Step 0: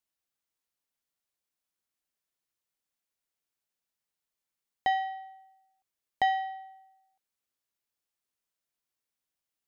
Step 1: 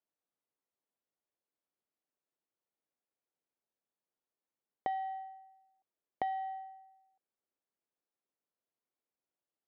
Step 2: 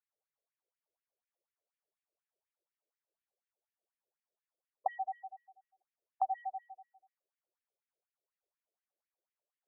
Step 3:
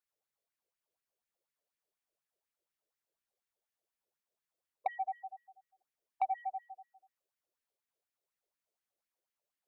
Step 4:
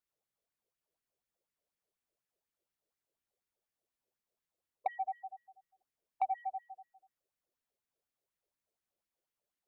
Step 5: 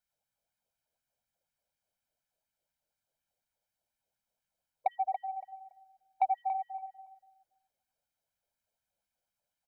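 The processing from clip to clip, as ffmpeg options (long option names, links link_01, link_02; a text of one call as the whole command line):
ffmpeg -i in.wav -af "bandpass=frequency=420:width_type=q:width=0.8:csg=0,acompressor=threshold=-37dB:ratio=4,volume=3dB" out.wav
ffmpeg -i in.wav -af "aemphasis=mode=reproduction:type=riaa,afftfilt=real='re*between(b*sr/1024,460*pow(2400/460,0.5+0.5*sin(2*PI*4.1*pts/sr))/1.41,460*pow(2400/460,0.5+0.5*sin(2*PI*4.1*pts/sr))*1.41)':imag='im*between(b*sr/1024,460*pow(2400/460,0.5+0.5*sin(2*PI*4.1*pts/sr))/1.41,460*pow(2400/460,0.5+0.5*sin(2*PI*4.1*pts/sr))*1.41)':win_size=1024:overlap=0.75,volume=4dB" out.wav
ffmpeg -i in.wav -af "asoftclip=type=tanh:threshold=-24dB,volume=1.5dB" out.wav
ffmpeg -i in.wav -af "lowshelf=frequency=500:gain=7.5,volume=-2.5dB" out.wav
ffmpeg -i in.wav -filter_complex "[0:a]aecho=1:1:1.3:0.74,asplit=2[link_01][link_02];[link_02]adelay=283,lowpass=frequency=2000:poles=1,volume=-6.5dB,asplit=2[link_03][link_04];[link_04]adelay=283,lowpass=frequency=2000:poles=1,volume=0.23,asplit=2[link_05][link_06];[link_06]adelay=283,lowpass=frequency=2000:poles=1,volume=0.23[link_07];[link_03][link_05][link_07]amix=inputs=3:normalize=0[link_08];[link_01][link_08]amix=inputs=2:normalize=0" out.wav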